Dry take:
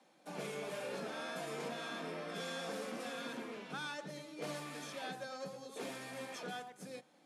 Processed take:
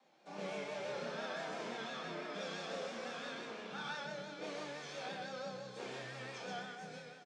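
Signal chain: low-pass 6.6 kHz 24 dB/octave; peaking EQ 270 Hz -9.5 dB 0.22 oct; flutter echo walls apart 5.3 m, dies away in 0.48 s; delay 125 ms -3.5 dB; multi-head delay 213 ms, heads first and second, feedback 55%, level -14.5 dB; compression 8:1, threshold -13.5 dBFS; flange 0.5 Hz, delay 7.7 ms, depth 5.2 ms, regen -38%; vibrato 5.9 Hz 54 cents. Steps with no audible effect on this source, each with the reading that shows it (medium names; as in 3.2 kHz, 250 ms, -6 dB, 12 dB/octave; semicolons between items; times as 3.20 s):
compression, threshold -13.5 dBFS: peak at its input -26.5 dBFS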